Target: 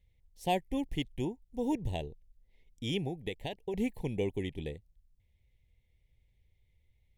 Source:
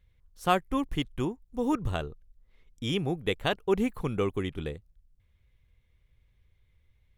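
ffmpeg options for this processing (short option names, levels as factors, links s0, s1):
-filter_complex "[0:a]asettb=1/sr,asplit=3[s0][s1][s2];[s0]atrim=end=3.074[s3];[s1]atrim=start=3.07:end=3.74,asetpts=PTS-STARTPTS,afade=t=in:d=0.004:c=qsin,afade=t=out:st=0.666:d=0.004:c=qsin,acompressor=threshold=0.0355:ratio=10[s4];[s2]atrim=start=3.736[s5];[s3][s4]acrossfade=d=0.004:c1=hsin:c2=qsin[s6];[s6][s5]acrossfade=d=0.004:c1=qsin:c2=hsin,asuperstop=centerf=1300:order=8:qfactor=1.5,volume=0.631"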